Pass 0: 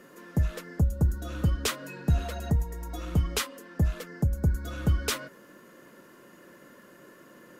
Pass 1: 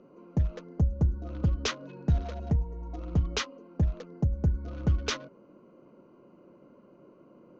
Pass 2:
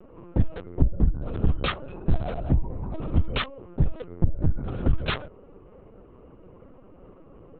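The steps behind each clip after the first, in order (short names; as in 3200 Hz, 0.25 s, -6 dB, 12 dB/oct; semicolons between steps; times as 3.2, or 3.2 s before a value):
Wiener smoothing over 25 samples; elliptic low-pass 6300 Hz, stop band 40 dB
in parallel at -5 dB: soft clip -27 dBFS, distortion -9 dB; on the sum: LPC vocoder at 8 kHz pitch kept; gain +3 dB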